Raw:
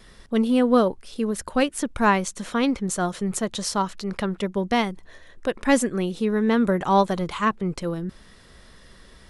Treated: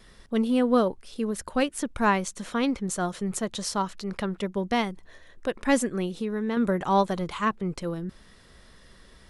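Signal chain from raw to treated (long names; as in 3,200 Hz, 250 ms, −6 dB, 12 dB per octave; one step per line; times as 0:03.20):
0:06.06–0:06.57: downward compressor 2 to 1, threshold −25 dBFS, peak gain reduction 5 dB
level −3.5 dB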